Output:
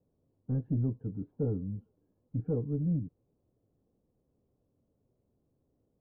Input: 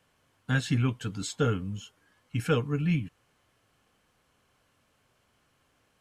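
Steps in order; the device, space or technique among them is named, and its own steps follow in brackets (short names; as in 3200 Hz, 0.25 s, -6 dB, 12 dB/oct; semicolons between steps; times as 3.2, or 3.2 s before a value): overdriven synthesiser ladder filter (soft clip -21.5 dBFS, distortion -15 dB; ladder low-pass 570 Hz, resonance 20%); gain +3 dB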